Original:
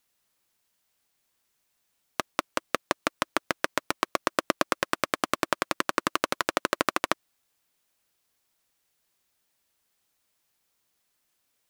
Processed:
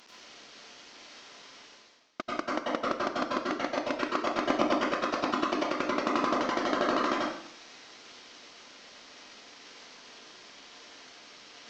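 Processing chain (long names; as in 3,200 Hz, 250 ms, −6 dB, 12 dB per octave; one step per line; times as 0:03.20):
variable-slope delta modulation 32 kbit/s
low shelf with overshoot 160 Hz −13.5 dB, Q 1.5
reversed playback
upward compression, threshold −37 dBFS
reversed playback
dense smooth reverb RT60 0.64 s, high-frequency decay 0.9×, pre-delay 80 ms, DRR −5.5 dB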